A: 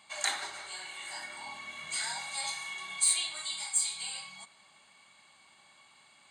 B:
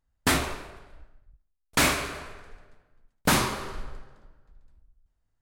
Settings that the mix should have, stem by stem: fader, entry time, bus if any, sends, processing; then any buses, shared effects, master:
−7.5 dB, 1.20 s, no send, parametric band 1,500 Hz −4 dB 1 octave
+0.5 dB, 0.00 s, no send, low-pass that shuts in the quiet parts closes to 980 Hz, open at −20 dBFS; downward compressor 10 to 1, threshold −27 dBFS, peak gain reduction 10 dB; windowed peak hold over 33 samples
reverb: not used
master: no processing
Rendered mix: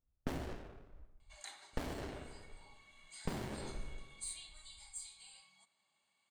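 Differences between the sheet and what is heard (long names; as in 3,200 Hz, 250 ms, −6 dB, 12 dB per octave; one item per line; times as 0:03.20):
stem A −7.5 dB → −18.5 dB
stem B +0.5 dB → −6.0 dB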